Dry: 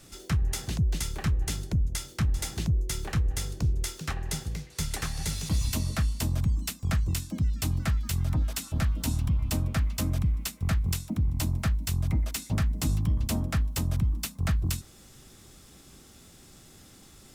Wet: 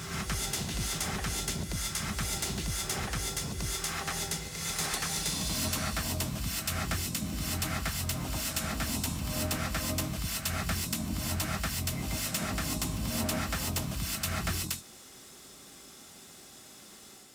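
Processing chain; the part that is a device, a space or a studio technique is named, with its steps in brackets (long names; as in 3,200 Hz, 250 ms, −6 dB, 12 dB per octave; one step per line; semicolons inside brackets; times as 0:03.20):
ghost voice (reversed playback; convolution reverb RT60 1.0 s, pre-delay 88 ms, DRR −2.5 dB; reversed playback; high-pass filter 430 Hz 6 dB per octave)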